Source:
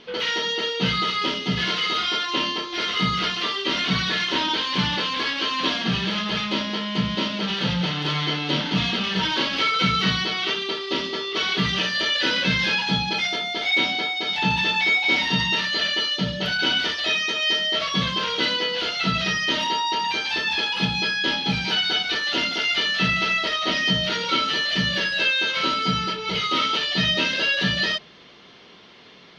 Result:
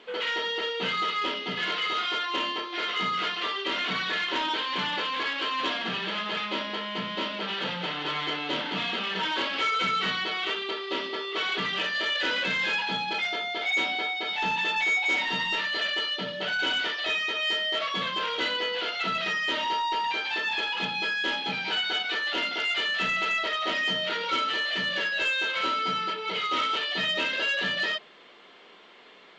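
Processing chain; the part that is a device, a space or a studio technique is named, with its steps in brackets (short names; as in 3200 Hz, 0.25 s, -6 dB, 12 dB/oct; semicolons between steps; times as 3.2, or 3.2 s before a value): telephone (BPF 370–3000 Hz; soft clip -17.5 dBFS, distortion -21 dB; gain -1.5 dB; A-law 128 kbps 16000 Hz)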